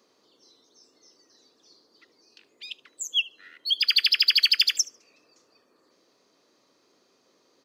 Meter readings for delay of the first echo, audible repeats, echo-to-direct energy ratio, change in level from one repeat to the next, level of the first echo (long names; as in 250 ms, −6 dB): 74 ms, 1, −21.5 dB, repeats not evenly spaced, −21.5 dB